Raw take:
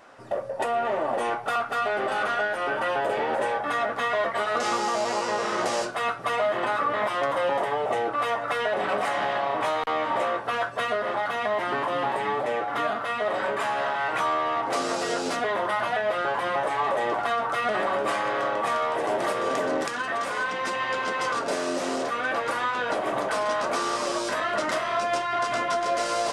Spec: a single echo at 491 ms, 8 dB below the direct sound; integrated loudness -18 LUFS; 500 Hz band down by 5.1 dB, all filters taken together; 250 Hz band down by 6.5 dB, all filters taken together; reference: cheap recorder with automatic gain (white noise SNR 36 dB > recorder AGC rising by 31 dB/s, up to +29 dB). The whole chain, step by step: peaking EQ 250 Hz -6.5 dB; peaking EQ 500 Hz -5.5 dB; delay 491 ms -8 dB; white noise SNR 36 dB; recorder AGC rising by 31 dB/s, up to +29 dB; trim +9.5 dB

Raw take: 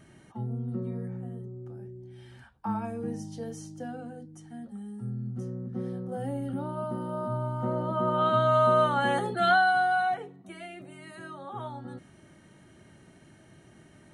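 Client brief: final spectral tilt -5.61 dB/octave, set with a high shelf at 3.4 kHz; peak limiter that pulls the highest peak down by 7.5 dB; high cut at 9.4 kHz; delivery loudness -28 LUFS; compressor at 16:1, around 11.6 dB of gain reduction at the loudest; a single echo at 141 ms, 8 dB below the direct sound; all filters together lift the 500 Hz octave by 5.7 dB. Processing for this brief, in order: low-pass 9.4 kHz; peaking EQ 500 Hz +7.5 dB; treble shelf 3.4 kHz +9 dB; compression 16:1, threshold -26 dBFS; peak limiter -27 dBFS; delay 141 ms -8 dB; trim +8 dB

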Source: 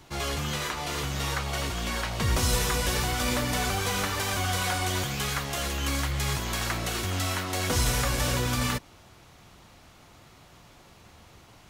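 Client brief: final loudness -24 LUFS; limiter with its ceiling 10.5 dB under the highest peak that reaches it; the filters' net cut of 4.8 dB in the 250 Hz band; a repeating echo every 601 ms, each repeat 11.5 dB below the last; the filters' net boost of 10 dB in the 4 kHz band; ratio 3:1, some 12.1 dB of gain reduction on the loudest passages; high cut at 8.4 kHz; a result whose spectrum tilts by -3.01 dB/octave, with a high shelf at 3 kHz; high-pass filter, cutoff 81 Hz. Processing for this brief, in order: high-pass 81 Hz; low-pass 8.4 kHz; peaking EQ 250 Hz -6.5 dB; treble shelf 3 kHz +7.5 dB; peaking EQ 4 kHz +7 dB; compression 3:1, threshold -36 dBFS; peak limiter -31 dBFS; feedback delay 601 ms, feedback 27%, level -11.5 dB; trim +15 dB

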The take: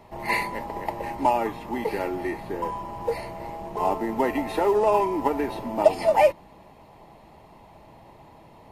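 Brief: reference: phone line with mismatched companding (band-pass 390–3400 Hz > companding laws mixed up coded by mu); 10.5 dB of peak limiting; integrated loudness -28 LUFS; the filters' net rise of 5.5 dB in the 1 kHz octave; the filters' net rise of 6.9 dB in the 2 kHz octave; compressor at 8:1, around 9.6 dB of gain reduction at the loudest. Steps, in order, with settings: peaking EQ 1 kHz +5.5 dB; peaking EQ 2 kHz +7 dB; compression 8:1, threshold -19 dBFS; peak limiter -18.5 dBFS; band-pass 390–3400 Hz; companding laws mixed up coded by mu; trim +0.5 dB

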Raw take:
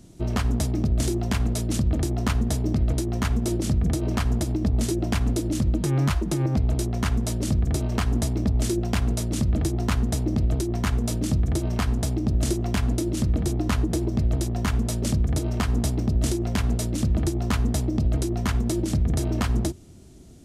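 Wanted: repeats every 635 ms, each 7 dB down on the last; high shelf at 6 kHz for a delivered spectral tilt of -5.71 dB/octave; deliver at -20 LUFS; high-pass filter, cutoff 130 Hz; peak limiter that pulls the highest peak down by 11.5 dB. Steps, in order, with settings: high-pass 130 Hz; treble shelf 6 kHz +3.5 dB; peak limiter -22 dBFS; feedback delay 635 ms, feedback 45%, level -7 dB; trim +10 dB

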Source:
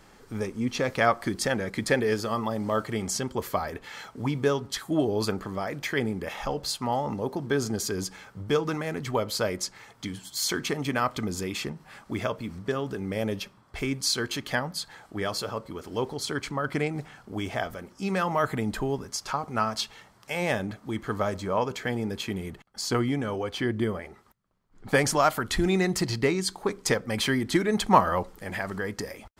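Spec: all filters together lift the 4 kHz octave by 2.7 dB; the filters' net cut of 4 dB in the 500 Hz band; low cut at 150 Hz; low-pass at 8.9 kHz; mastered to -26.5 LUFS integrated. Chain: high-pass 150 Hz; low-pass 8.9 kHz; peaking EQ 500 Hz -5 dB; peaking EQ 4 kHz +3.5 dB; trim +3.5 dB

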